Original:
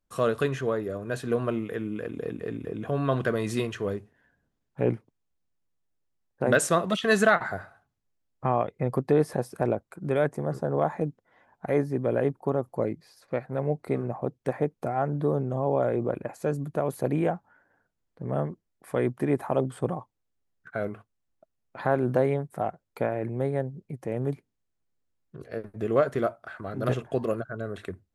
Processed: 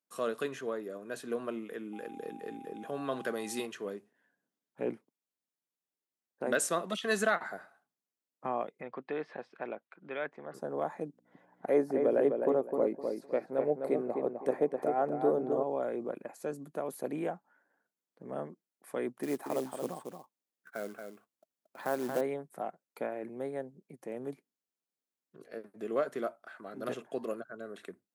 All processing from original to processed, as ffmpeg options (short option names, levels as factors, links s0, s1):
-filter_complex "[0:a]asettb=1/sr,asplit=3[s0][s1][s2];[s0]atrim=end=1.934[s3];[s1]atrim=start=1.93:end=3.66,asetpts=PTS-STARTPTS,afade=t=in:d=0.004:c=qsin,afade=t=out:st=1.726:d=0.004:c=qsin,highshelf=f=4800:g=5.5,aeval=exprs='val(0)+0.01*sin(2*PI*800*n/s)':c=same[s4];[s2]atrim=start=3.656[s5];[s3][s4]acrossfade=d=0.004:c1=hsin:c2=qsin[s6];[s6][s5]acrossfade=d=0.004:c1=qsin:c2=hsin,asettb=1/sr,asplit=3[s7][s8][s9];[s7]atrim=end=8.814[s10];[s8]atrim=start=8.81:end=10.54,asetpts=PTS-STARTPTS,afade=t=in:d=0.004:c=qsin,afade=t=out:st=1.726:d=0.004:c=qsin,lowpass=f=3000:w=0.5412,lowpass=f=3000:w=1.3066,tiltshelf=f=1100:g=-8.5[s11];[s9]atrim=start=10.536[s12];[s10][s11]acrossfade=d=0.004:c1=hsin:c2=qsin[s13];[s13][s12]acrossfade=d=0.004:c1=qsin:c2=hsin,asettb=1/sr,asplit=3[s14][s15][s16];[s14]atrim=end=11.094[s17];[s15]atrim=start=11.09:end=15.63,asetpts=PTS-STARTPTS,afade=t=in:d=0.004:c=qsin,afade=t=out:st=4.536:d=0.004:c=qsin,equalizer=f=480:w=0.7:g=7.5,aeval=exprs='val(0)+0.00224*(sin(2*PI*60*n/s)+sin(2*PI*2*60*n/s)/2+sin(2*PI*3*60*n/s)/3+sin(2*PI*4*60*n/s)/4+sin(2*PI*5*60*n/s)/5)':c=same,asplit=2[s18][s19];[s19]adelay=256,lowpass=f=2300:p=1,volume=0.562,asplit=2[s20][s21];[s21]adelay=256,lowpass=f=2300:p=1,volume=0.27,asplit=2[s22][s23];[s23]adelay=256,lowpass=f=2300:p=1,volume=0.27,asplit=2[s24][s25];[s25]adelay=256,lowpass=f=2300:p=1,volume=0.27[s26];[s18][s20][s22][s24][s26]amix=inputs=5:normalize=0,atrim=end_sample=200214[s27];[s16]atrim=start=15.626[s28];[s17][s27]acrossfade=d=0.004:c1=hsin:c2=qsin[s29];[s29][s28]acrossfade=d=0.004:c1=qsin:c2=hsin,asettb=1/sr,asplit=3[s30][s31][s32];[s30]atrim=end=19.234[s33];[s31]atrim=start=19.23:end=22.21,asetpts=PTS-STARTPTS,afade=t=in:d=0.004:c=qsin,afade=t=out:st=2.976:d=0.004:c=qsin,acrusher=bits=5:mode=log:mix=0:aa=0.000001,aecho=1:1:228:0.473,atrim=end_sample=131418[s34];[s32]atrim=start=22.206[s35];[s33][s34]acrossfade=d=0.004:c1=hsin:c2=qsin[s36];[s36][s35]acrossfade=d=0.004:c1=qsin:c2=hsin,highpass=f=200:w=0.5412,highpass=f=200:w=1.3066,highshelf=f=4900:g=6.5,volume=0.376"